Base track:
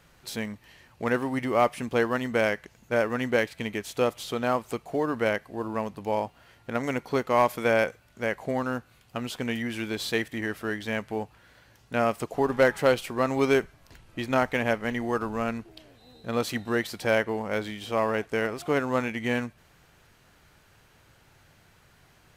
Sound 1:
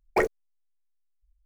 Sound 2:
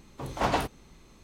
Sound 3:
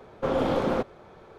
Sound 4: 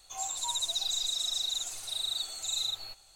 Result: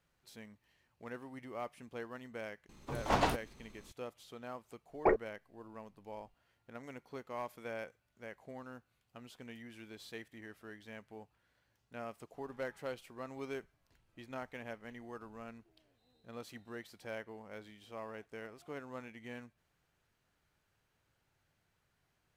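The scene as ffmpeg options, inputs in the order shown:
ffmpeg -i bed.wav -i cue0.wav -i cue1.wav -filter_complex "[0:a]volume=-20dB[link_01];[2:a]aeval=exprs='if(lt(val(0),0),0.708*val(0),val(0))':channel_layout=same[link_02];[1:a]lowpass=1400[link_03];[link_02]atrim=end=1.23,asetpts=PTS-STARTPTS,volume=-2.5dB,afade=type=in:duration=0.004:curve=hsin,afade=type=out:start_time=1.226:duration=0.004:curve=hsin,adelay=2690[link_04];[link_03]atrim=end=1.45,asetpts=PTS-STARTPTS,volume=-4dB,afade=type=in:duration=0.004:curve=hsin,afade=type=out:start_time=1.446:duration=0.004:curve=hsin,adelay=215649S[link_05];[link_01][link_04][link_05]amix=inputs=3:normalize=0" out.wav

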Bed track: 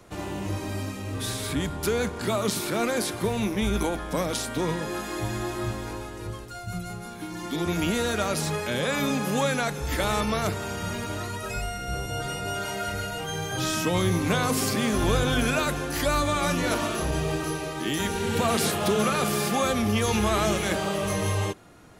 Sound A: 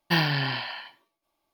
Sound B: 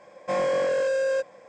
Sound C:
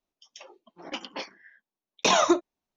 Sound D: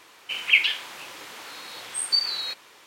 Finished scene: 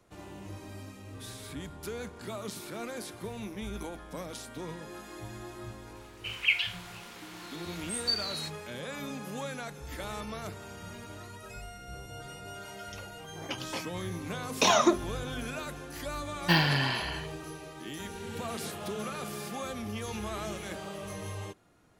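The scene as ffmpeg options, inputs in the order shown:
ffmpeg -i bed.wav -i cue0.wav -i cue1.wav -i cue2.wav -i cue3.wav -filter_complex "[0:a]volume=-13dB[link_01];[4:a]atrim=end=2.86,asetpts=PTS-STARTPTS,volume=-7.5dB,afade=type=in:duration=0.004:curve=hsin,afade=type=out:start_time=2.856:duration=0.004:curve=hsin,adelay=5950[link_02];[3:a]atrim=end=2.76,asetpts=PTS-STARTPTS,volume=-2dB,afade=type=in:duration=0.004:curve=hsin,afade=type=out:start_time=2.756:duration=0.004:curve=hsin,adelay=12570[link_03];[1:a]atrim=end=1.53,asetpts=PTS-STARTPTS,volume=-1dB,afade=type=in:duration=0.004:curve=hsin,afade=type=out:start_time=1.526:duration=0.004:curve=hsin,adelay=16380[link_04];[link_01][link_02][link_03][link_04]amix=inputs=4:normalize=0" out.wav

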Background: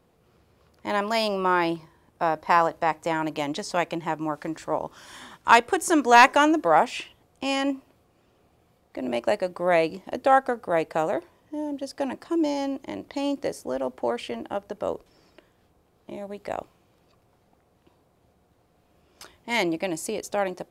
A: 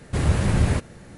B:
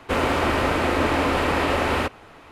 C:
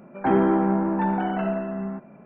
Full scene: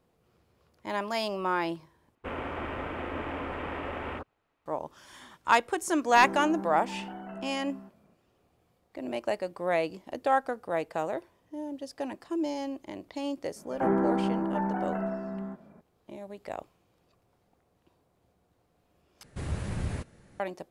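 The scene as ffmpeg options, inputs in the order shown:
ffmpeg -i bed.wav -i cue0.wav -i cue1.wav -i cue2.wav -filter_complex "[3:a]asplit=2[link_01][link_02];[0:a]volume=-6.5dB[link_03];[2:a]afwtdn=0.0282[link_04];[link_02]lowpass=frequency=2200:width=0.5412,lowpass=frequency=2200:width=1.3066[link_05];[link_03]asplit=3[link_06][link_07][link_08];[link_06]atrim=end=2.154[link_09];[link_04]atrim=end=2.51,asetpts=PTS-STARTPTS,volume=-14dB[link_10];[link_07]atrim=start=4.656:end=19.234[link_11];[1:a]atrim=end=1.17,asetpts=PTS-STARTPTS,volume=-13dB[link_12];[link_08]atrim=start=20.396[link_13];[link_01]atrim=end=2.25,asetpts=PTS-STARTPTS,volume=-16dB,afade=type=in:duration=0.004:curve=hsin,afade=type=out:start_time=2.246:duration=0.004:curve=hsin,adelay=5900[link_14];[link_05]atrim=end=2.25,asetpts=PTS-STARTPTS,volume=-6.5dB,afade=type=in:duration=0.004:curve=hsin,afade=type=out:start_time=2.246:duration=0.004:curve=hsin,adelay=13560[link_15];[link_09][link_10]acrossfade=duration=0.004:curve1=hsin:curve2=hsin[link_16];[link_16][link_11]acrossfade=duration=0.004:curve1=hsin:curve2=hsin[link_17];[link_17][link_12]acrossfade=duration=0.004:curve1=hsin:curve2=hsin[link_18];[link_18][link_13]acrossfade=duration=0.004:curve1=hsin:curve2=hsin[link_19];[link_19][link_14][link_15]amix=inputs=3:normalize=0" out.wav

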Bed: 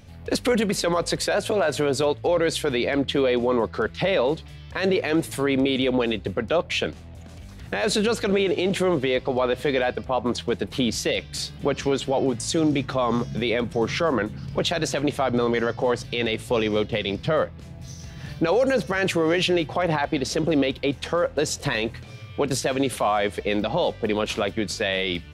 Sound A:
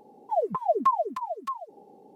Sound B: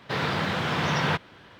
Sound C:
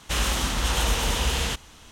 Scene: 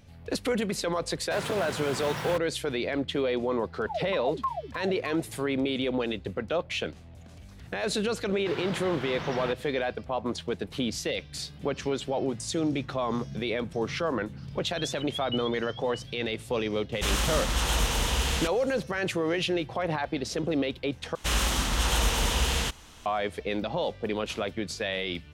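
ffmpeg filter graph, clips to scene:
ffmpeg -i bed.wav -i cue0.wav -i cue1.wav -i cue2.wav -filter_complex "[2:a]asplit=2[link_01][link_02];[1:a]asplit=2[link_03][link_04];[3:a]asplit=2[link_05][link_06];[0:a]volume=-6.5dB[link_07];[link_01]acrusher=bits=4:mix=0:aa=0.5[link_08];[link_04]lowpass=frequency=3400:width_type=q:width=0.5098,lowpass=frequency=3400:width_type=q:width=0.6013,lowpass=frequency=3400:width_type=q:width=0.9,lowpass=frequency=3400:width_type=q:width=2.563,afreqshift=-4000[link_09];[link_07]asplit=2[link_10][link_11];[link_10]atrim=end=21.154[link_12];[link_06]atrim=end=1.91,asetpts=PTS-STARTPTS,volume=-1.5dB[link_13];[link_11]atrim=start=23.056[link_14];[link_08]atrim=end=1.59,asetpts=PTS-STARTPTS,volume=-9.5dB,afade=type=in:duration=0.004:curve=hsin,afade=type=out:start_time=1.586:duration=0.004:curve=hsin,adelay=1210[link_15];[link_03]atrim=end=2.15,asetpts=PTS-STARTPTS,volume=-8dB,afade=type=in:duration=0.004:curve=hsin,afade=type=out:start_time=2.146:duration=0.004:curve=hsin,adelay=3580[link_16];[link_02]atrim=end=1.59,asetpts=PTS-STARTPTS,volume=-11dB,afade=type=in:duration=0.004:curve=hsin,afade=type=out:start_time=1.586:duration=0.004:curve=hsin,adelay=8360[link_17];[link_09]atrim=end=2.15,asetpts=PTS-STARTPTS,volume=-14dB,afade=type=in:duration=0.004:curve=hsin,afade=type=out:start_time=2.146:duration=0.004:curve=hsin,adelay=14460[link_18];[link_05]atrim=end=1.91,asetpts=PTS-STARTPTS,volume=-2.5dB,afade=type=in:duration=0.004:curve=hsin,afade=type=out:start_time=1.906:duration=0.004:curve=hsin,adelay=16920[link_19];[link_12][link_13]acrossfade=duration=0.004:curve1=hsin:curve2=hsin[link_20];[link_20][link_14]acrossfade=duration=0.004:curve1=hsin:curve2=hsin[link_21];[link_21][link_15][link_16][link_17][link_18][link_19]amix=inputs=6:normalize=0" out.wav

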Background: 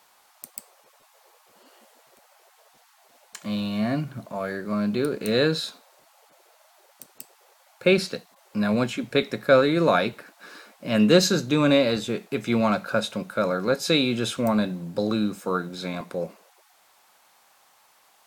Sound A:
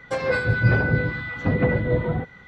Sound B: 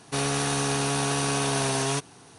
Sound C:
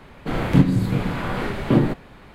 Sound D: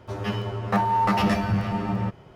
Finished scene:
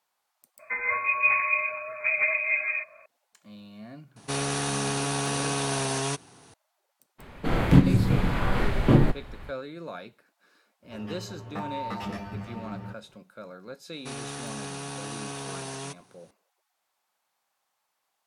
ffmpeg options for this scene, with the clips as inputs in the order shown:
ffmpeg -i bed.wav -i cue0.wav -i cue1.wav -i cue2.wav -i cue3.wav -filter_complex "[2:a]asplit=2[link_01][link_02];[0:a]volume=-19dB[link_03];[1:a]lowpass=frequency=2200:width_type=q:width=0.5098,lowpass=frequency=2200:width_type=q:width=0.6013,lowpass=frequency=2200:width_type=q:width=0.9,lowpass=frequency=2200:width_type=q:width=2.563,afreqshift=-2600[link_04];[3:a]asubboost=boost=4.5:cutoff=110[link_05];[4:a]aresample=32000,aresample=44100[link_06];[link_04]atrim=end=2.47,asetpts=PTS-STARTPTS,volume=-5dB,afade=type=in:duration=0.004:curve=hsin,afade=type=out:start_time=2.466:duration=0.004:curve=hsin,adelay=590[link_07];[link_01]atrim=end=2.38,asetpts=PTS-STARTPTS,volume=-2.5dB,afade=type=in:duration=0.004:curve=hsin,afade=type=out:start_time=2.376:duration=0.004:curve=hsin,adelay=4160[link_08];[link_05]atrim=end=2.34,asetpts=PTS-STARTPTS,volume=-1.5dB,afade=type=in:duration=0.02,afade=type=out:start_time=2.32:duration=0.02,adelay=7180[link_09];[link_06]atrim=end=2.35,asetpts=PTS-STARTPTS,volume=-13dB,afade=type=in:duration=0.004:curve=hsin,afade=type=out:start_time=2.346:duration=0.004:curve=hsin,adelay=10830[link_10];[link_02]atrim=end=2.38,asetpts=PTS-STARTPTS,volume=-11dB,afade=type=in:duration=0.004:curve=hsin,afade=type=out:start_time=2.376:duration=0.004:curve=hsin,adelay=13930[link_11];[link_03][link_07][link_08][link_09][link_10][link_11]amix=inputs=6:normalize=0" out.wav

